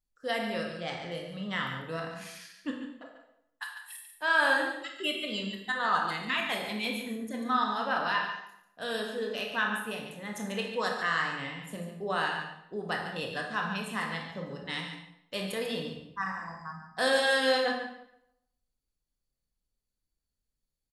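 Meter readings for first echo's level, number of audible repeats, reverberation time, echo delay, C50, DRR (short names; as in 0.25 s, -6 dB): -9.5 dB, 1, 0.75 s, 0.143 s, 3.0 dB, 0.5 dB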